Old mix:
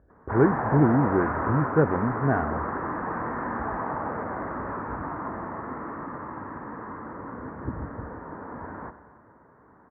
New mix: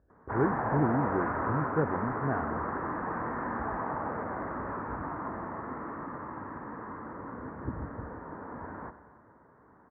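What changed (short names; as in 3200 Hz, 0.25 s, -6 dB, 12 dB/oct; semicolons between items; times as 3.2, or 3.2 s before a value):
speech -8.0 dB; background -3.5 dB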